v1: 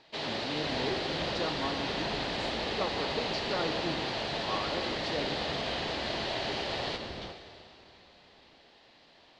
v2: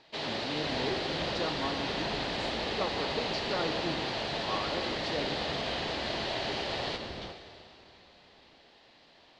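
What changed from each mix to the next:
none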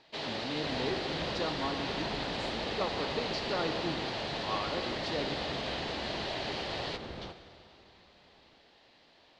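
first sound: send -10.5 dB

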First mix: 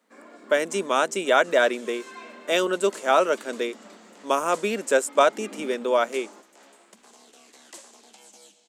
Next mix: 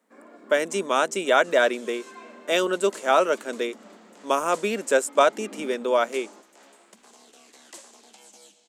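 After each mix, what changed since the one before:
first sound: add high shelf 2100 Hz -9.5 dB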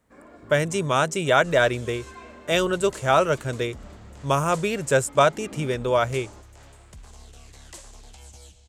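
master: remove elliptic high-pass 210 Hz, stop band 40 dB

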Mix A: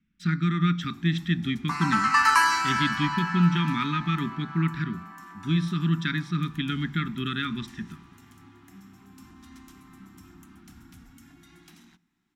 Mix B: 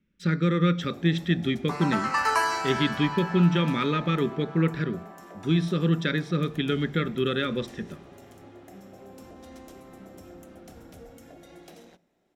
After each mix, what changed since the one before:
second sound -6.0 dB; master: remove Chebyshev band-stop 260–1100 Hz, order 2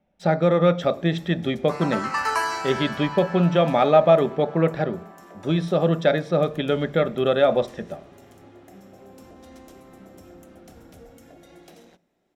speech: remove Butterworth band-stop 710 Hz, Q 0.75

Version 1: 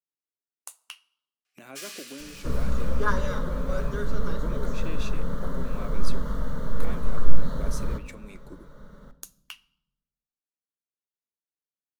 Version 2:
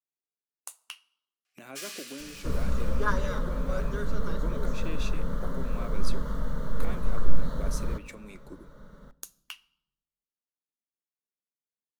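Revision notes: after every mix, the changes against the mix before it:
second sound: send -8.0 dB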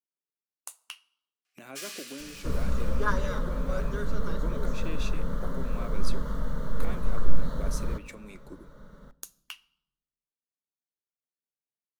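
none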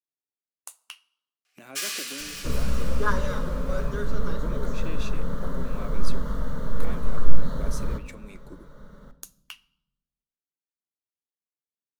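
first sound +9.5 dB; second sound: send +9.0 dB

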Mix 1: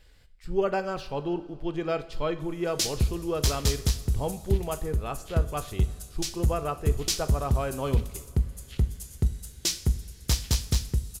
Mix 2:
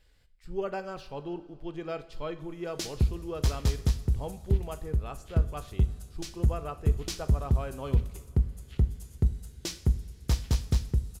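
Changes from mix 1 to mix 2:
speech -7.0 dB; background: add high shelf 2300 Hz -12 dB

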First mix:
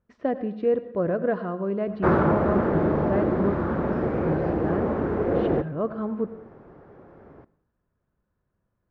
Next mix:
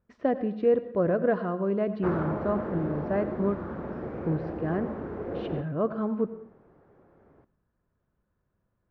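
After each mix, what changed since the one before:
background -10.5 dB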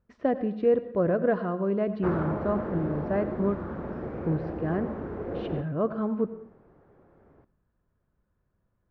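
master: add low shelf 74 Hz +5.5 dB

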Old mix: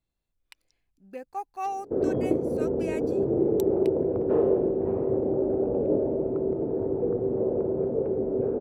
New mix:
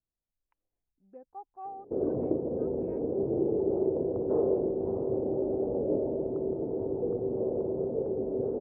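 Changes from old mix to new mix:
speech -6.0 dB; master: add ladder low-pass 1200 Hz, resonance 20%

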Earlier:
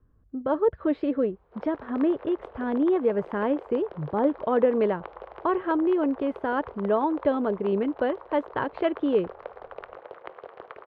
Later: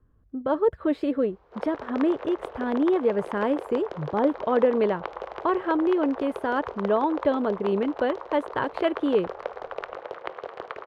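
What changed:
background +5.5 dB; master: remove air absorption 220 m

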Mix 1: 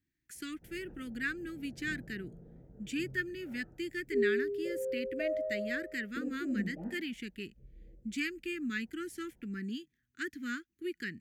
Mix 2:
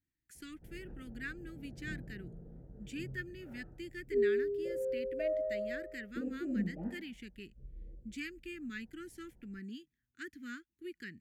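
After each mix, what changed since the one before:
speech -7.5 dB; master: add low shelf 82 Hz +7.5 dB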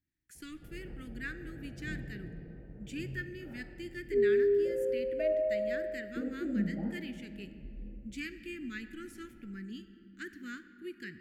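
reverb: on, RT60 2.9 s

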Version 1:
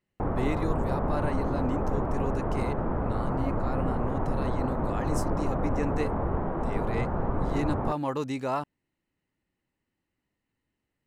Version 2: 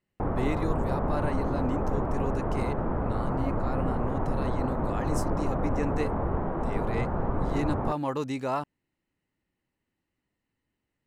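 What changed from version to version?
none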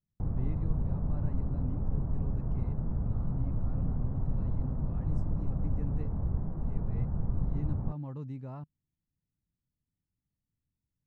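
speech: add air absorption 66 m; master: add EQ curve 150 Hz 0 dB, 340 Hz -16 dB, 3600 Hz -26 dB

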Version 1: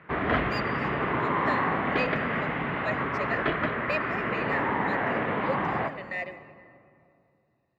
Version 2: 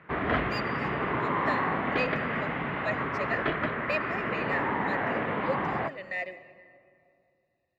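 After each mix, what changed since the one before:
background: send -10.5 dB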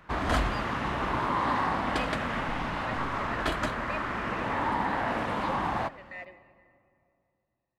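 speech -9.0 dB; background: remove speaker cabinet 100–2900 Hz, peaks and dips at 150 Hz +5 dB, 420 Hz +7 dB, 890 Hz -4 dB, 2000 Hz +5 dB

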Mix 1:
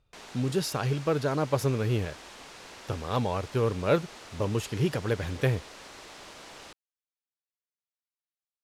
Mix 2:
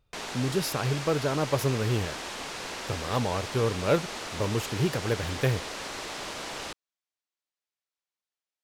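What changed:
speech: remove LPF 11000 Hz; background +10.0 dB

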